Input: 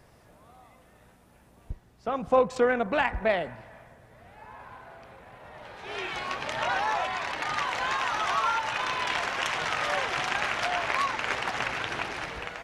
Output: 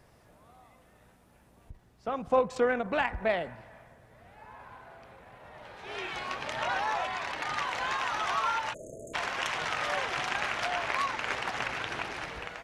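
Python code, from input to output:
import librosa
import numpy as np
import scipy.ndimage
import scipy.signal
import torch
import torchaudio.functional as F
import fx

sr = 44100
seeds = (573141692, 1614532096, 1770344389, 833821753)

y = fx.spec_erase(x, sr, start_s=8.74, length_s=0.4, low_hz=680.0, high_hz=6300.0)
y = fx.end_taper(y, sr, db_per_s=250.0)
y = F.gain(torch.from_numpy(y), -3.0).numpy()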